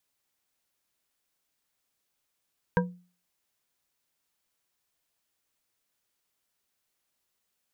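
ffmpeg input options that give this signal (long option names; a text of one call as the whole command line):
ffmpeg -f lavfi -i "aevalsrc='0.1*pow(10,-3*t/0.39)*sin(2*PI*178*t)+0.0891*pow(10,-3*t/0.192)*sin(2*PI*490.7*t)+0.0794*pow(10,-3*t/0.12)*sin(2*PI*961.9*t)+0.0708*pow(10,-3*t/0.084)*sin(2*PI*1590.1*t)':duration=0.89:sample_rate=44100" out.wav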